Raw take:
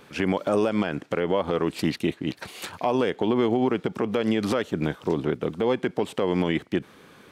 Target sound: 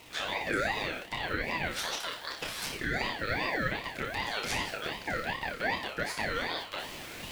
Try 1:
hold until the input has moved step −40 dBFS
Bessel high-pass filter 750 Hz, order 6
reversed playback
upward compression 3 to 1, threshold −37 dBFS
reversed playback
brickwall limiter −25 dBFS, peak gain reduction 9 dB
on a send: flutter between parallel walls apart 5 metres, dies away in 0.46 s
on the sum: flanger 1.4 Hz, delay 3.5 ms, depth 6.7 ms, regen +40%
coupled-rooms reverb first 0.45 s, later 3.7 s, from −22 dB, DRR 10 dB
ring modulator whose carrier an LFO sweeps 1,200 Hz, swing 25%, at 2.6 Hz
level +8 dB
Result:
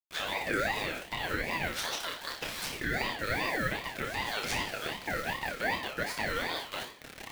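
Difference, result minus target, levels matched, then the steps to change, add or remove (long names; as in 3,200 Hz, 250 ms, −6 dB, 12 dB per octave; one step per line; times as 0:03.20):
hold until the input has moved: distortion +11 dB
change: hold until the input has moved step −50 dBFS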